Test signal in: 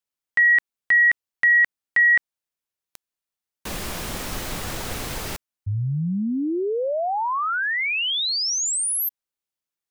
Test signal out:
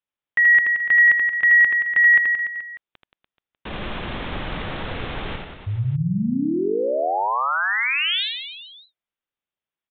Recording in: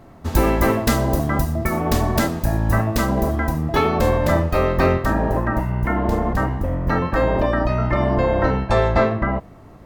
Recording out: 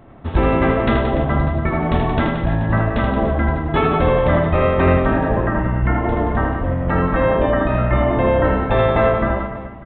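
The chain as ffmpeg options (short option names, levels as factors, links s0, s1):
-af "aecho=1:1:80|176|291.2|429.4|595.3:0.631|0.398|0.251|0.158|0.1,aresample=8000,aresample=44100"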